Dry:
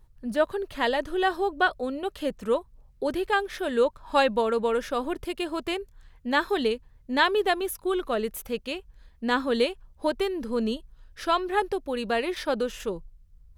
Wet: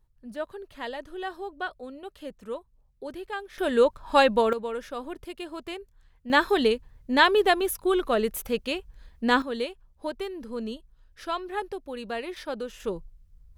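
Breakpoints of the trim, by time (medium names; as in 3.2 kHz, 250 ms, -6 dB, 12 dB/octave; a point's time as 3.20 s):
-10 dB
from 3.58 s +2.5 dB
from 4.53 s -7 dB
from 6.30 s +3 dB
from 9.42 s -6.5 dB
from 12.84 s 0 dB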